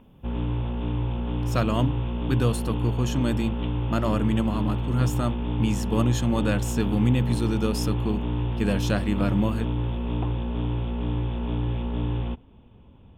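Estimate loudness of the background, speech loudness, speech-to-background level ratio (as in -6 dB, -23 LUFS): -28.5 LUFS, -27.0 LUFS, 1.5 dB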